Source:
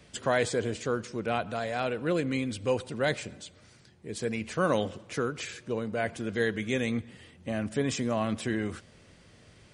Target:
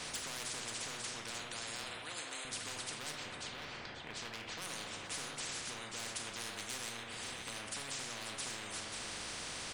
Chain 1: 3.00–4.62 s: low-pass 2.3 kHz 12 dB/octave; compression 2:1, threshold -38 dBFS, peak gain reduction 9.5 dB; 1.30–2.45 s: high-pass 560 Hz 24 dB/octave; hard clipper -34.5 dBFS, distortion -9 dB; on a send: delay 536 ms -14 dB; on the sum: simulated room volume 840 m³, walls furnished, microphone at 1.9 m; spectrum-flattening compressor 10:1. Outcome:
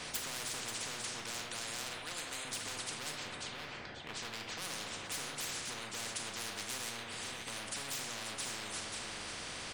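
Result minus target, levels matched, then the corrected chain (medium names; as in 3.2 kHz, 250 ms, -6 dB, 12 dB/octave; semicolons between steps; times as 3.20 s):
compression: peak gain reduction -5 dB
3.00–4.62 s: low-pass 2.3 kHz 12 dB/octave; compression 2:1, threshold -48.5 dBFS, peak gain reduction 14.5 dB; 1.30–2.45 s: high-pass 560 Hz 24 dB/octave; hard clipper -34.5 dBFS, distortion -17 dB; on a send: delay 536 ms -14 dB; on the sum: simulated room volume 840 m³, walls furnished, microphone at 1.9 m; spectrum-flattening compressor 10:1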